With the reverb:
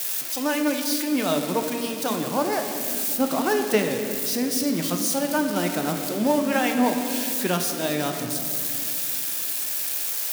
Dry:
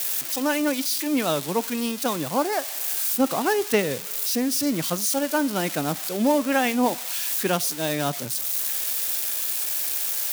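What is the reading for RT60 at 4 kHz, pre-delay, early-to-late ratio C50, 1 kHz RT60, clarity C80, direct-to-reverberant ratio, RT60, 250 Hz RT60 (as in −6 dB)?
1.7 s, 3 ms, 5.5 dB, 2.2 s, 6.5 dB, 4.0 dB, 2.5 s, 4.1 s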